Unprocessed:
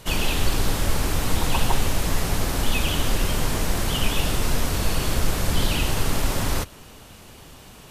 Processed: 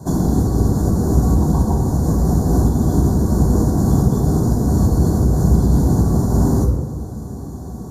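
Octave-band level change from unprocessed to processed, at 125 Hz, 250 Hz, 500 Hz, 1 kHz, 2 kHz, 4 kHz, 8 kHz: +12.5 dB, +13.5 dB, +7.0 dB, +2.0 dB, below −10 dB, −15.0 dB, −3.5 dB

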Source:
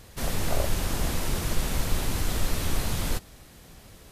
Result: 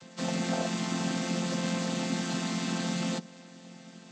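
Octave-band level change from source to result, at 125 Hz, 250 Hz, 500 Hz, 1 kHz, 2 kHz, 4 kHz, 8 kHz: −4.0, +6.0, −0.5, −1.0, −1.0, −1.0, −4.0 decibels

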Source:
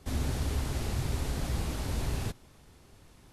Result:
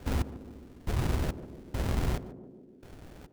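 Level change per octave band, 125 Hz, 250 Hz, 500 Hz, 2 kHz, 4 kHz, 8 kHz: −0.5, +1.5, +1.5, −0.5, −4.0, −6.5 decibels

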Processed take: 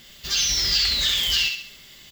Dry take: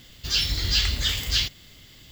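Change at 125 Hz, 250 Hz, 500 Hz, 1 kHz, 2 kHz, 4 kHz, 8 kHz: −9.5, −3.5, 0.0, +1.5, +4.0, +4.0, +7.5 decibels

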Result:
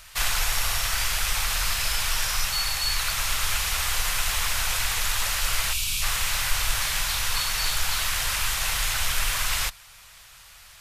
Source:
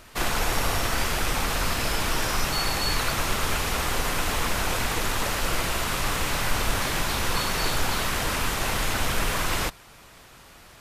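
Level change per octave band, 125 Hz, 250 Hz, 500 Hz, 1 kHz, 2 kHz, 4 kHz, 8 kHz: −5.0, −17.0, −12.0, −4.0, +0.5, +3.0, +4.5 decibels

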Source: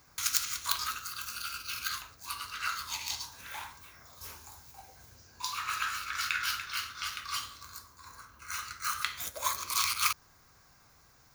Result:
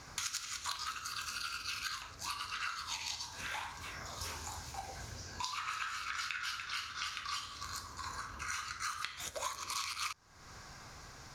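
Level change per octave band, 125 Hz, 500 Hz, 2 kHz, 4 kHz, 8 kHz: +3.5, +1.5, −4.0, −4.5, −6.0 decibels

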